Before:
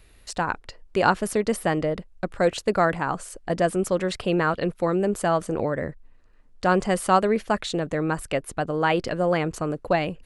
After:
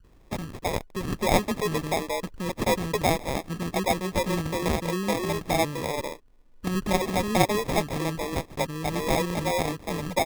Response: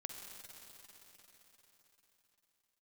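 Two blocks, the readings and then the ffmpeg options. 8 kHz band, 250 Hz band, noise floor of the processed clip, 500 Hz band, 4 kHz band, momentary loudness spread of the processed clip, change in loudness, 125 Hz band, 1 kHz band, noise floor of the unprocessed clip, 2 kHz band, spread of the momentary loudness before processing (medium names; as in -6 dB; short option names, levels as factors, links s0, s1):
+2.0 dB, -2.0 dB, -54 dBFS, -4.0 dB, +2.5 dB, 8 LU, -2.5 dB, 0.0 dB, -3.5 dB, -53 dBFS, -3.5 dB, 8 LU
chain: -filter_complex "[0:a]lowpass=f=4700:t=q:w=10,acrossover=split=350|3600[s0][s1][s2];[s2]adelay=40[s3];[s1]adelay=260[s4];[s0][s4][s3]amix=inputs=3:normalize=0,acrusher=samples=30:mix=1:aa=0.000001,volume=0.794"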